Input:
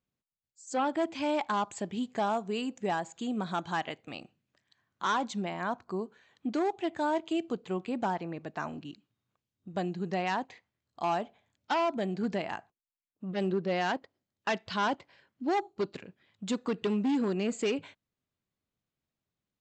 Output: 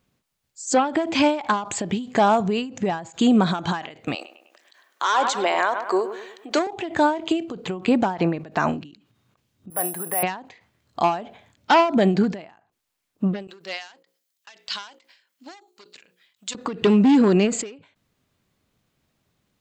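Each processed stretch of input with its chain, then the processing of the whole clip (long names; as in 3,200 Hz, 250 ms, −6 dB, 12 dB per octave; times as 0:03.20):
0:02.40–0:03.07: low-pass filter 7,400 Hz 24 dB per octave + parametric band 110 Hz +12 dB 0.8 octaves + downward compressor 4 to 1, threshold −39 dBFS
0:04.15–0:06.67: high-pass filter 400 Hz 24 dB per octave + high-shelf EQ 6,000 Hz +8.5 dB + bucket-brigade delay 101 ms, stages 2,048, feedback 46%, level −13 dB
0:09.70–0:10.23: three-way crossover with the lows and the highs turned down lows −20 dB, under 540 Hz, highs −23 dB, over 2,300 Hz + bad sample-rate conversion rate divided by 4×, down filtered, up zero stuff
0:13.47–0:16.55: first difference + mains-hum notches 60/120/180/240/300/360/420/480/540 Hz
whole clip: high-shelf EQ 7,300 Hz −4 dB; boost into a limiter +27.5 dB; every ending faded ahead of time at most 120 dB per second; level −9 dB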